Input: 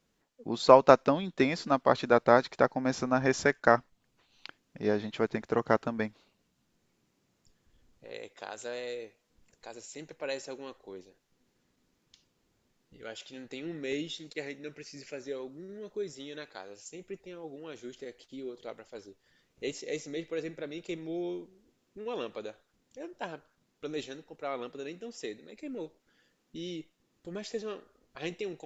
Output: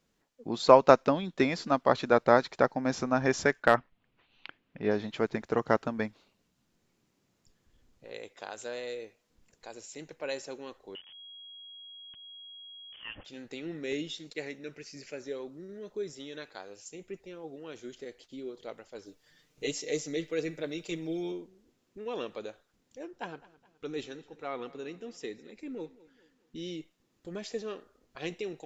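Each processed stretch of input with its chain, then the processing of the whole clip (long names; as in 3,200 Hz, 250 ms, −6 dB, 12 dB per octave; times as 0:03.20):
0:03.63–0:04.91: high shelf with overshoot 4,200 Hz −13.5 dB, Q 1.5 + gain into a clipping stage and back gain 8.5 dB
0:10.95–0:13.25: hold until the input has moved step −49.5 dBFS + upward compression, threshold −47 dBFS + voice inversion scrambler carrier 3,300 Hz
0:19.06–0:21.32: high-shelf EQ 3,600 Hz +6 dB + comb filter 6.6 ms
0:23.04–0:26.58: high-shelf EQ 4,700 Hz −5.5 dB + notch filter 610 Hz, Q 5.8 + repeating echo 210 ms, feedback 44%, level −20 dB
whole clip: no processing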